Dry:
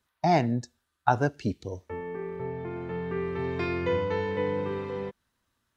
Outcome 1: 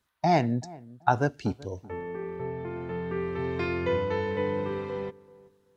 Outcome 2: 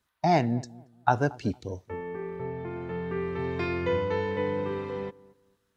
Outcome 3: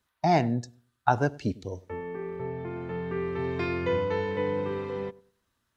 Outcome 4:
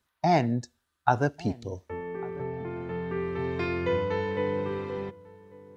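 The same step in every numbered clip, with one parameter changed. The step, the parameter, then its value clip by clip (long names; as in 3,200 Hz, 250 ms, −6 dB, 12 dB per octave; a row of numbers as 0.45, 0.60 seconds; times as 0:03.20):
feedback echo with a low-pass in the loop, delay time: 382, 228, 99, 1,146 milliseconds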